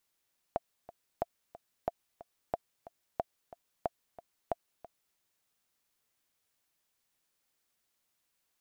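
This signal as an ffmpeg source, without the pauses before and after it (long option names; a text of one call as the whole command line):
ffmpeg -f lavfi -i "aevalsrc='pow(10,(-17-17.5*gte(mod(t,2*60/182),60/182))/20)*sin(2*PI*685*mod(t,60/182))*exp(-6.91*mod(t,60/182)/0.03)':duration=4.61:sample_rate=44100" out.wav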